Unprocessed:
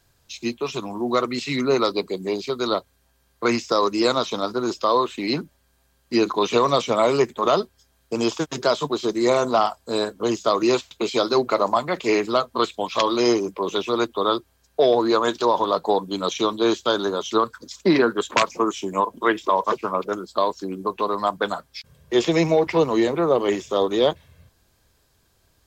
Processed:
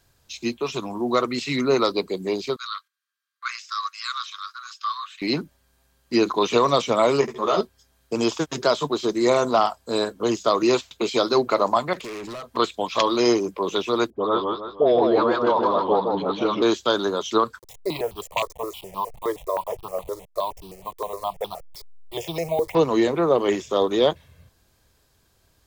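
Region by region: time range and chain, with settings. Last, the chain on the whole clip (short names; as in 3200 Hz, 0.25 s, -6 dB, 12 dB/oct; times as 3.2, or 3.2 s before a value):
2.56–5.22 high shelf 3100 Hz -7.5 dB + gate -53 dBFS, range -11 dB + rippled Chebyshev high-pass 1100 Hz, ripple 3 dB
7.21–7.61 flutter echo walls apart 11.3 m, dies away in 0.44 s + ensemble effect
11.93–12.57 compressor, threshold -24 dBFS + hard clip -32 dBFS
14.1–16.62 air absorption 310 m + dispersion highs, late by 66 ms, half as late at 860 Hz + warbling echo 0.157 s, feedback 40%, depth 163 cents, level -4 dB
17.59–22.75 level-crossing sampler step -33.5 dBFS + fixed phaser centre 620 Hz, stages 4 + step phaser 9.6 Hz 730–2000 Hz
whole clip: dry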